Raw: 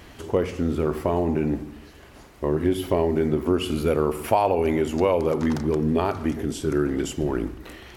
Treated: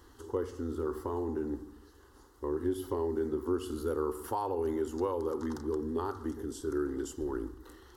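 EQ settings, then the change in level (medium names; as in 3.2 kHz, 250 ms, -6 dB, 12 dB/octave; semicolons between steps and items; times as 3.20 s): static phaser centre 640 Hz, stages 6; -8.5 dB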